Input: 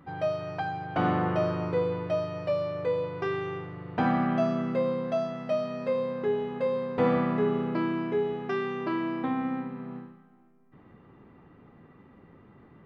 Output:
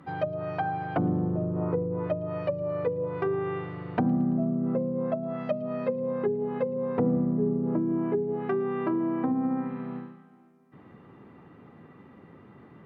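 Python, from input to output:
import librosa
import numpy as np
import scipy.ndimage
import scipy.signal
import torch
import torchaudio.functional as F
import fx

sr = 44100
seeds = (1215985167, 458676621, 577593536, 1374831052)

y = scipy.signal.sosfilt(scipy.signal.butter(2, 94.0, 'highpass', fs=sr, output='sos'), x)
y = fx.env_lowpass_down(y, sr, base_hz=320.0, full_db=-24.0)
y = fx.echo_wet_highpass(y, sr, ms=112, feedback_pct=69, hz=4100.0, wet_db=-15)
y = y * 10.0 ** (3.5 / 20.0)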